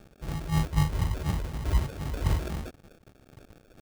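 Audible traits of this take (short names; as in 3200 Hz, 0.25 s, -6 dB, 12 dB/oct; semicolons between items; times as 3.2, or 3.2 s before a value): a quantiser's noise floor 8-bit, dither none; phasing stages 4, 4 Hz, lowest notch 130–1300 Hz; aliases and images of a low sample rate 1000 Hz, jitter 0%; noise-modulated level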